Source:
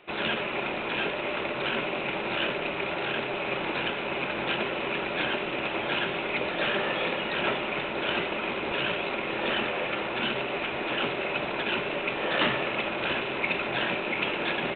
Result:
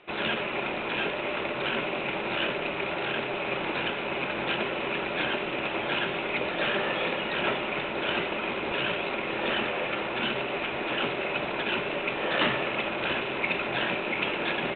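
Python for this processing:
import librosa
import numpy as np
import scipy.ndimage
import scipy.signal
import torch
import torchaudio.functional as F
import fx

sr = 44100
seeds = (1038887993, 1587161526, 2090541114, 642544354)

y = scipy.signal.sosfilt(scipy.signal.butter(2, 5500.0, 'lowpass', fs=sr, output='sos'), x)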